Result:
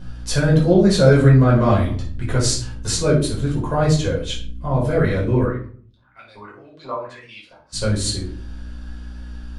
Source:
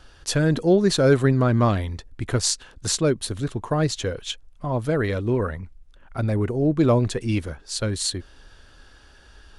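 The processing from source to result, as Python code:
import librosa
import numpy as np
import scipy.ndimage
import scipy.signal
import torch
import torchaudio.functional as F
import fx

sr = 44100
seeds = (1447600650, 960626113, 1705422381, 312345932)

y = fx.add_hum(x, sr, base_hz=60, snr_db=12)
y = fx.filter_lfo_bandpass(y, sr, shape='saw_up', hz=fx.line((5.43, 3.9), (7.72, 1.1)), low_hz=810.0, high_hz=4900.0, q=3.4, at=(5.43, 7.72), fade=0.02)
y = fx.room_shoebox(y, sr, seeds[0], volume_m3=450.0, walls='furnished', distance_m=5.1)
y = y * 10.0 ** (-5.0 / 20.0)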